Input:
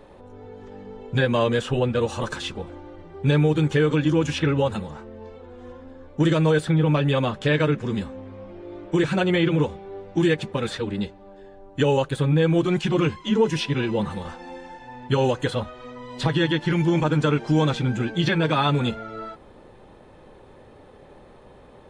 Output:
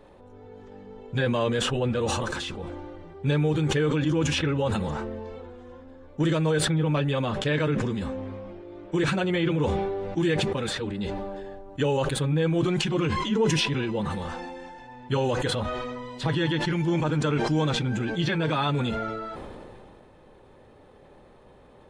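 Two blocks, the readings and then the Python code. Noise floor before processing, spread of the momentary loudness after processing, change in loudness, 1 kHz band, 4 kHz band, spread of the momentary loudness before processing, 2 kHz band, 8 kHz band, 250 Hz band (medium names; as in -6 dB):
-49 dBFS, 16 LU, -3.5 dB, -2.5 dB, -0.5 dB, 20 LU, -2.5 dB, +5.0 dB, -3.5 dB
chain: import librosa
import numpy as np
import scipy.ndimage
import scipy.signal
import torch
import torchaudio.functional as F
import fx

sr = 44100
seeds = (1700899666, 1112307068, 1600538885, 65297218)

y = fx.sustainer(x, sr, db_per_s=22.0)
y = y * librosa.db_to_amplitude(-5.0)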